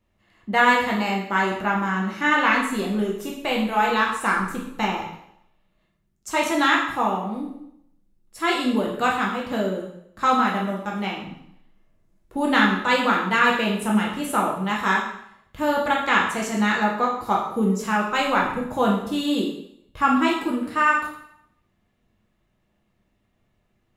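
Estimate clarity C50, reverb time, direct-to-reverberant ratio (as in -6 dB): 4.5 dB, 0.70 s, -3.0 dB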